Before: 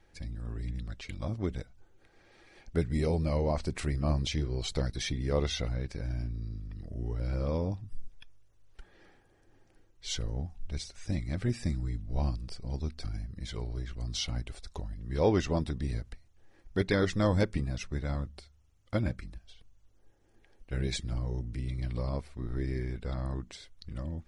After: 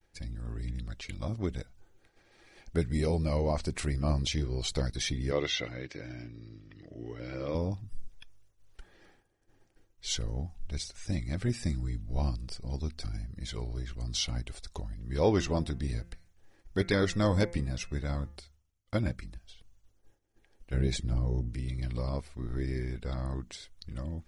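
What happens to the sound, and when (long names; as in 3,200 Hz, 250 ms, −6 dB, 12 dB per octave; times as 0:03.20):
0:05.31–0:07.55: loudspeaker in its box 170–6,100 Hz, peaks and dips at 210 Hz −10 dB, 310 Hz +5 dB, 850 Hz −4 dB, 2,000 Hz +7 dB, 3,000 Hz +6 dB, 4,800 Hz −4 dB
0:15.31–0:18.36: hum removal 171.9 Hz, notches 15
0:20.74–0:21.49: tilt shelving filter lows +4 dB, about 1,100 Hz
whole clip: downward expander −56 dBFS; high-shelf EQ 4,600 Hz +5.5 dB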